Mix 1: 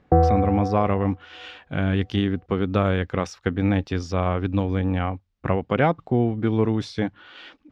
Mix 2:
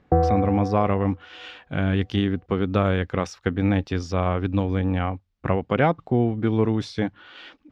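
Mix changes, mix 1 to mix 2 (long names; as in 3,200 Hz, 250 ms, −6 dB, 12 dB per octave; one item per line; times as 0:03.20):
background −3.5 dB
reverb: on, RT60 0.90 s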